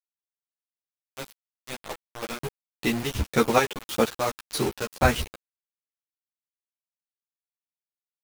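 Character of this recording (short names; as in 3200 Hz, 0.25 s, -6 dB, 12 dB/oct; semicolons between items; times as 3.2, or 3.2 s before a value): chopped level 1.8 Hz, depth 60%, duty 45%; a quantiser's noise floor 6-bit, dither none; a shimmering, thickened sound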